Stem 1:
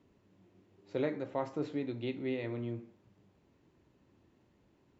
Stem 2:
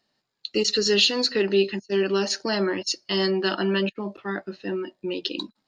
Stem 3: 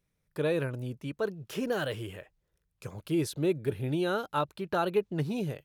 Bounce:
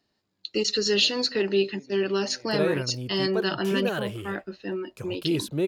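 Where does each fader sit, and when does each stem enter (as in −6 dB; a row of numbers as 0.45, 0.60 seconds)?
−13.5, −2.5, +2.0 decibels; 0.00, 0.00, 2.15 seconds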